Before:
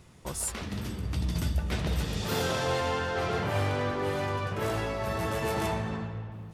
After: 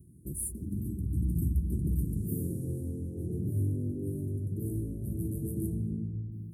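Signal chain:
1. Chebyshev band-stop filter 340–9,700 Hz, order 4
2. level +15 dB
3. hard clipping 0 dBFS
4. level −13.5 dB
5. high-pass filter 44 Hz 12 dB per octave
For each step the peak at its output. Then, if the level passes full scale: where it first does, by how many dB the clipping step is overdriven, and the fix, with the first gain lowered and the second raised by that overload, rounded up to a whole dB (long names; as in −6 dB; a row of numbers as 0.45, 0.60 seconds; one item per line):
−19.5, −4.5, −4.5, −18.0, −18.5 dBFS
no step passes full scale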